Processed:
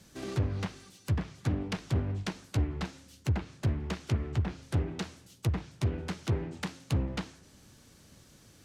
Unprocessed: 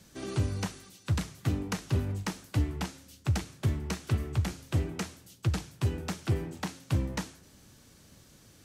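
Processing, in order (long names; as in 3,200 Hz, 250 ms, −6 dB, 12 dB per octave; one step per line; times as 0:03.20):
phase distortion by the signal itself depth 0.44 ms
hard clipping −21.5 dBFS, distortion −21 dB
treble cut that deepens with the level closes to 2,200 Hz, closed at −25 dBFS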